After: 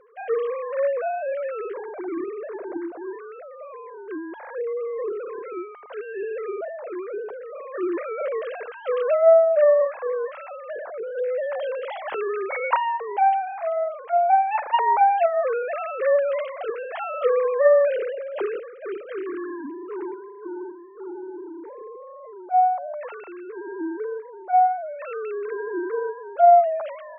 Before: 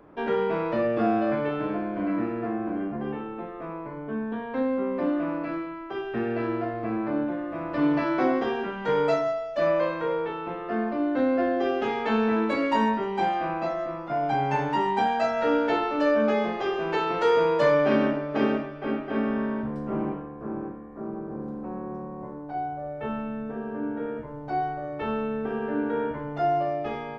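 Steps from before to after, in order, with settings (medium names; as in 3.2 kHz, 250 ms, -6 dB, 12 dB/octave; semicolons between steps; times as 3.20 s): formants replaced by sine waves; trim +2.5 dB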